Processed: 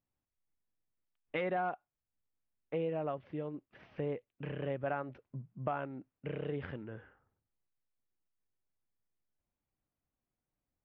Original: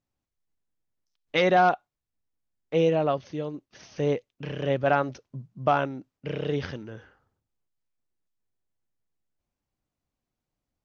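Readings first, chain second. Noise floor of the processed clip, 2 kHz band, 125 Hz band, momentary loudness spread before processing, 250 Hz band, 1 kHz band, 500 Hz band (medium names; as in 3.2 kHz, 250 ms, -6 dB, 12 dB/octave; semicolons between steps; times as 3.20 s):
under -85 dBFS, -13.5 dB, -10.0 dB, 18 LU, -11.0 dB, -14.5 dB, -12.0 dB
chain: low-pass 2.6 kHz 24 dB/octave; compression 2.5:1, threshold -31 dBFS, peak gain reduction 10.5 dB; trim -5 dB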